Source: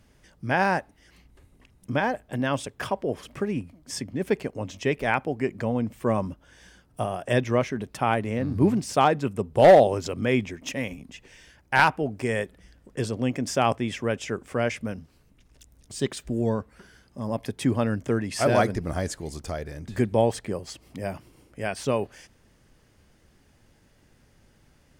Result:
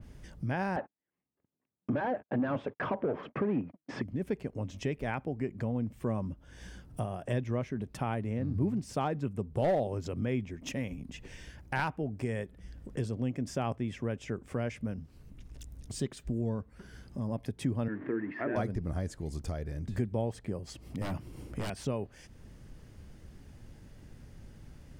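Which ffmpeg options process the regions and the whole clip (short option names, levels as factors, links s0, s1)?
-filter_complex "[0:a]asettb=1/sr,asplit=3[s0][s1][s2];[s0]atrim=end=0.764[s3];[s1]atrim=start=0.76:end=4.02,asetpts=PTS-STARTPTS,afade=t=in:d=0.004:c=qsin,afade=t=out:st=3.256:d=0.004:c=qsin,agate=range=0.00501:threshold=0.00398:ratio=16:release=100:detection=peak,asplit=2[s4][s5];[s5]highpass=f=720:p=1,volume=22.4,asoftclip=type=tanh:threshold=0.299[s6];[s4][s6]amix=inputs=2:normalize=0,lowpass=f=1000:p=1,volume=0.501,highpass=130,lowpass=2400[s7];[s2]atrim=start=4.016[s8];[s3][s7]acrossfade=d=0.004:c1=hsin:c2=qsin[s9];[s9][s8]acrossfade=d=0.004:c1=qsin:c2=hsin,asettb=1/sr,asplit=3[s10][s11][s12];[s10]atrim=end=17.884[s13];[s11]atrim=start=17.88:end=18.56,asetpts=PTS-STARTPTS,afade=t=in:d=0.004:c=qsin,afade=t=out:st=0.676:d=0.004:c=qsin,aeval=exprs='val(0)+0.5*0.0266*sgn(val(0))':c=same,highpass=300,equalizer=f=320:t=q:w=4:g=8,equalizer=f=540:t=q:w=4:g=-7,equalizer=f=780:t=q:w=4:g=-7,equalizer=f=1300:t=q:w=4:g=-3,equalizer=f=1800:t=q:w=4:g=9,lowpass=f=2100:w=0.5412,lowpass=f=2100:w=1.3066,bandreject=f=60:t=h:w=6,bandreject=f=120:t=h:w=6,bandreject=f=180:t=h:w=6,bandreject=f=240:t=h:w=6,bandreject=f=300:t=h:w=6,bandreject=f=360:t=h:w=6,bandreject=f=420:t=h:w=6,bandreject=f=480:t=h:w=6[s14];[s12]atrim=start=18.556[s15];[s13][s14]acrossfade=d=0.004:c1=hsin:c2=qsin[s16];[s16][s15]acrossfade=d=0.004:c1=qsin:c2=hsin,asettb=1/sr,asplit=3[s17][s18][s19];[s17]atrim=end=21.014[s20];[s18]atrim=start=21.01:end=21.7,asetpts=PTS-STARTPTS,afade=t=in:d=0.004:c=qsin,afade=t=out:st=0.686:d=0.004:c=qsin,acontrast=56,aeval=exprs='0.0668*(abs(mod(val(0)/0.0668+3,4)-2)-1)':c=same[s21];[s19]atrim=start=21.696[s22];[s20][s21]acrossfade=d=0.004:c1=hsin:c2=qsin[s23];[s23][s22]acrossfade=d=0.004:c1=qsin:c2=hsin,lowshelf=f=300:g=11.5,acompressor=threshold=0.00891:ratio=2,adynamicequalizer=threshold=0.00251:dfrequency=2900:dqfactor=0.7:tfrequency=2900:tqfactor=0.7:attack=5:release=100:ratio=0.375:range=2:mode=cutabove:tftype=highshelf"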